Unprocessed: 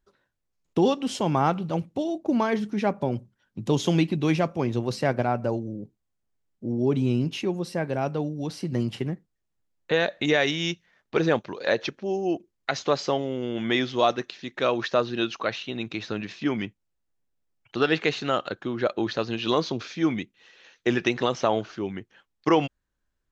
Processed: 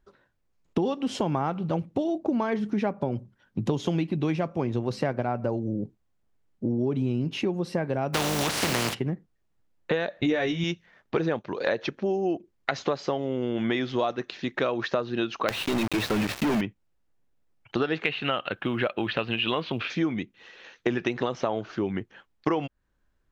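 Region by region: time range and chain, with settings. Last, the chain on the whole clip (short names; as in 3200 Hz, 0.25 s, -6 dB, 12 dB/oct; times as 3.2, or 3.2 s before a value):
8.13–8.93 spectral contrast lowered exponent 0.23 + HPF 52 Hz + fast leveller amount 70%
10.21–10.64 expander -25 dBFS + low shelf 190 Hz +12 dB + doubler 17 ms -3 dB
15.48–16.61 bell 610 Hz +4.5 dB 0.47 oct + notches 50/100 Hz + companded quantiser 2-bit
18.04–19.9 synth low-pass 2800 Hz, resonance Q 3.9 + bell 360 Hz -4 dB 0.93 oct + companded quantiser 8-bit
whole clip: high shelf 3900 Hz -10.5 dB; compressor 6:1, threshold -31 dBFS; gain +7.5 dB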